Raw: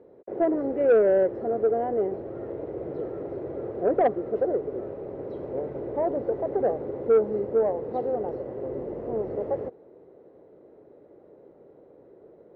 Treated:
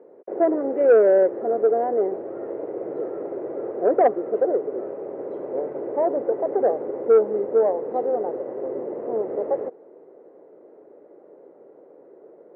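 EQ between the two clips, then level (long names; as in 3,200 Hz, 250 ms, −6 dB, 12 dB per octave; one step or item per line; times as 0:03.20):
band-pass filter 320–2,200 Hz
high-frequency loss of the air 160 metres
+5.5 dB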